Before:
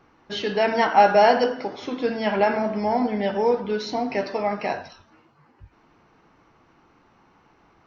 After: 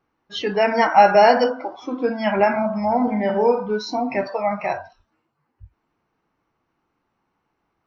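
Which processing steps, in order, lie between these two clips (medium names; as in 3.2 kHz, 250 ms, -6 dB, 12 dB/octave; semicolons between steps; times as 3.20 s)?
spectral noise reduction 18 dB; 3.03–3.71 s: flutter echo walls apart 7.3 m, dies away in 0.32 s; trim +3 dB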